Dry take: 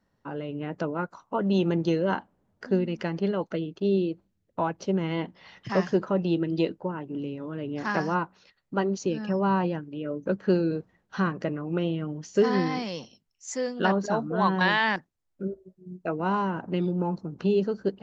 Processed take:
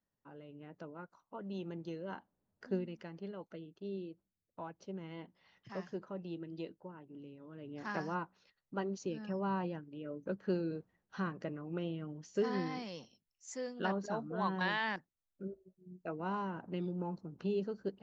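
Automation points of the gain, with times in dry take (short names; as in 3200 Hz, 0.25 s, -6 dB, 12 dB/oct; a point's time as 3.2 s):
1.99 s -18.5 dB
2.74 s -11 dB
3.04 s -18 dB
7.39 s -18 dB
7.91 s -11.5 dB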